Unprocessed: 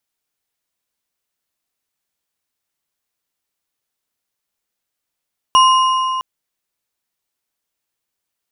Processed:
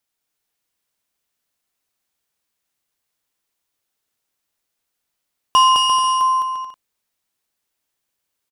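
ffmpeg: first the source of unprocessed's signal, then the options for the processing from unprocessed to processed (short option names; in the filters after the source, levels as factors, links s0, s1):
-f lavfi -i "aevalsrc='0.473*pow(10,-3*t/3.13)*sin(2*PI*1040*t)+0.2*pow(10,-3*t/2.309)*sin(2*PI*2867.3*t)+0.0841*pow(10,-3*t/1.887)*sin(2*PI*5620.2*t)+0.0355*pow(10,-3*t/1.623)*sin(2*PI*9290.3*t)':d=0.66:s=44100"
-af "asoftclip=type=tanh:threshold=0.562,aecho=1:1:210|346.5|435.2|492.9|530.4:0.631|0.398|0.251|0.158|0.1"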